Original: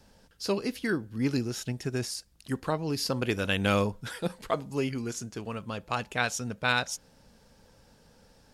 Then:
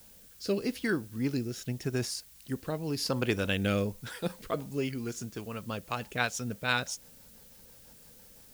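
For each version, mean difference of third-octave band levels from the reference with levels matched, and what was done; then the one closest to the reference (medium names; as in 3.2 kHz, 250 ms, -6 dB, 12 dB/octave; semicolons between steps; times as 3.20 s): 4.0 dB: rotary cabinet horn 0.85 Hz, later 6 Hz, at 4.09 s; added noise blue -56 dBFS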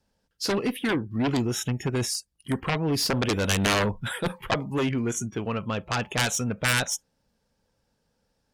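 6.5 dB: spectral noise reduction 22 dB; Chebyshev shaper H 7 -6 dB, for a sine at -10 dBFS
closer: first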